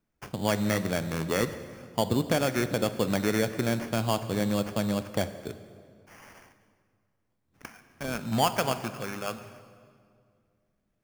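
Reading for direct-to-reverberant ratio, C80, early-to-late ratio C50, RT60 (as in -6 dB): 11.0 dB, 13.0 dB, 12.0 dB, 2.2 s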